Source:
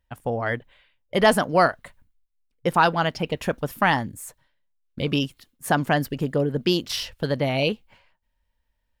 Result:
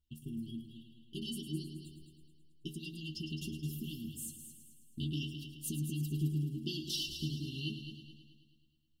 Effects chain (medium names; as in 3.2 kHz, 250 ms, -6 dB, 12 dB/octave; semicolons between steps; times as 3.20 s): compression 3:1, threshold -29 dBFS, peak gain reduction 13 dB; brick-wall FIR band-stop 390–2700 Hz; inharmonic resonator 74 Hz, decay 0.37 s, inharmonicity 0.008; on a send: multi-head delay 107 ms, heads first and second, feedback 50%, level -11 dB; on the sum: trim +4 dB